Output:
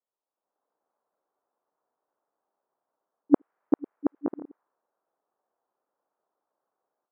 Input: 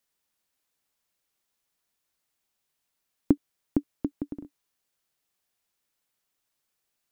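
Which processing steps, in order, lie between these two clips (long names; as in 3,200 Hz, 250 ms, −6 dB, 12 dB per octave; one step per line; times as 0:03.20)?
reversed piece by piece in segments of 61 ms
low-pass filter 1,400 Hz 24 dB per octave
low-pass that shuts in the quiet parts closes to 800 Hz, open at −31 dBFS
high-pass filter 530 Hz 12 dB per octave
automatic gain control gain up to 14.5 dB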